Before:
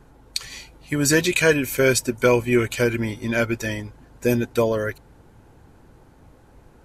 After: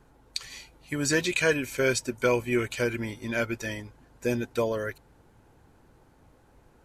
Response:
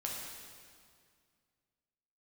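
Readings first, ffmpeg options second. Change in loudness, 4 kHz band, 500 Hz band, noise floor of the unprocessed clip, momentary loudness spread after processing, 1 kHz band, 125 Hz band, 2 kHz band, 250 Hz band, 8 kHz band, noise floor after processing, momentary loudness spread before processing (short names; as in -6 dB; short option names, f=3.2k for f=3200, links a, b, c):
-7.0 dB, -6.0 dB, -7.0 dB, -52 dBFS, 12 LU, -6.0 dB, -8.5 dB, -5.5 dB, -7.5 dB, -7.5 dB, -60 dBFS, 13 LU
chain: -filter_complex "[0:a]acrossover=split=8800[a][b];[b]acompressor=threshold=-45dB:ratio=4:attack=1:release=60[c];[a][c]amix=inputs=2:normalize=0,lowshelf=f=370:g=-3.5,volume=-5.5dB"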